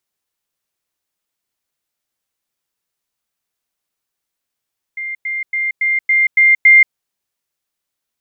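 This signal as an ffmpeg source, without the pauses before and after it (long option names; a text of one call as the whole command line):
ffmpeg -f lavfi -i "aevalsrc='pow(10,(-21.5+3*floor(t/0.28))/20)*sin(2*PI*2100*t)*clip(min(mod(t,0.28),0.18-mod(t,0.28))/0.005,0,1)':duration=1.96:sample_rate=44100" out.wav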